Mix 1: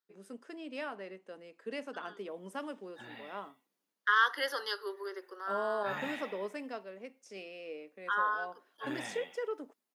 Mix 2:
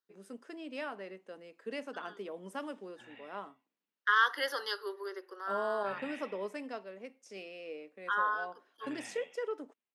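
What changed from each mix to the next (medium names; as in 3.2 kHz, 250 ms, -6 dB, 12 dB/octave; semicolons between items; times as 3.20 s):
background: add four-pole ladder low-pass 3.2 kHz, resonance 50%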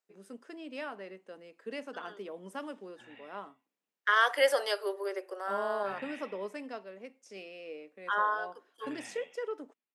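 second voice: remove static phaser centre 2.4 kHz, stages 6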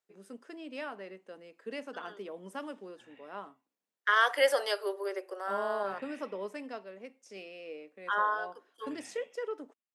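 background -6.5 dB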